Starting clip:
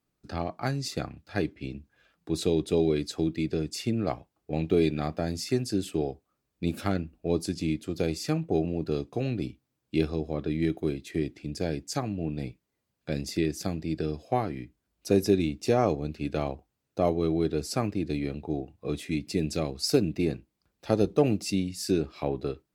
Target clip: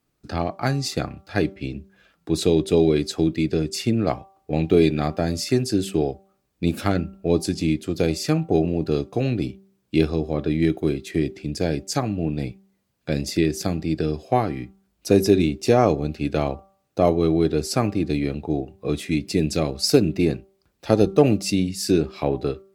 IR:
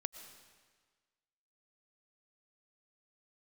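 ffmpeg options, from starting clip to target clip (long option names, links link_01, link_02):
-af "bandreject=frequency=194.1:width_type=h:width=4,bandreject=frequency=388.2:width_type=h:width=4,bandreject=frequency=582.3:width_type=h:width=4,bandreject=frequency=776.4:width_type=h:width=4,bandreject=frequency=970.5:width_type=h:width=4,bandreject=frequency=1164.6:width_type=h:width=4,bandreject=frequency=1358.7:width_type=h:width=4,volume=7dB"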